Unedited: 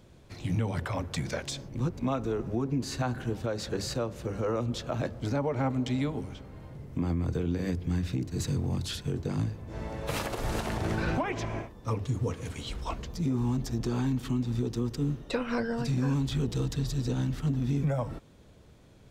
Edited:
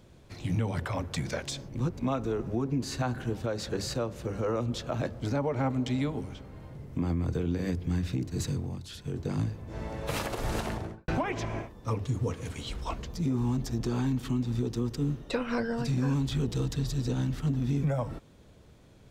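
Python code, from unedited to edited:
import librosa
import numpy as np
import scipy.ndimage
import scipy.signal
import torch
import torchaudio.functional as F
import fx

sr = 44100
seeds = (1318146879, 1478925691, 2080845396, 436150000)

y = fx.studio_fade_out(x, sr, start_s=10.61, length_s=0.47)
y = fx.edit(y, sr, fx.fade_down_up(start_s=8.42, length_s=0.87, db=-9.5, fade_s=0.39), tone=tone)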